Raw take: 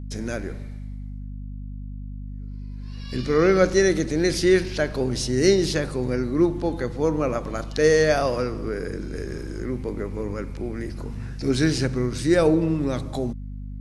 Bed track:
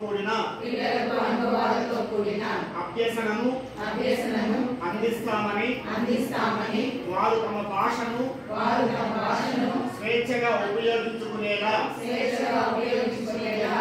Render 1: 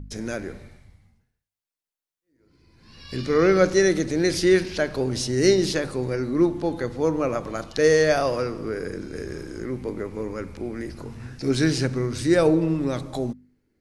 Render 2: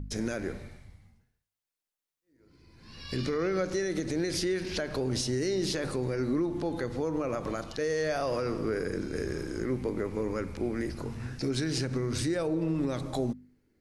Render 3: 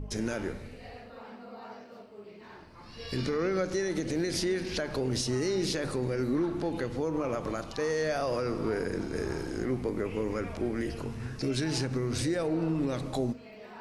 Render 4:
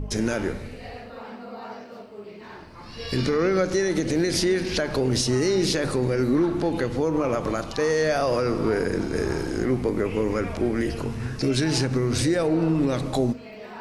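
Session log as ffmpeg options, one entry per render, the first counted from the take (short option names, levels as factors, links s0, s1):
-af "bandreject=f=50:t=h:w=4,bandreject=f=100:t=h:w=4,bandreject=f=150:t=h:w=4,bandreject=f=200:t=h:w=4,bandreject=f=250:t=h:w=4"
-af "acompressor=threshold=0.0794:ratio=6,alimiter=limit=0.0891:level=0:latency=1:release=102"
-filter_complex "[1:a]volume=0.0841[s0];[0:a][s0]amix=inputs=2:normalize=0"
-af "volume=2.37"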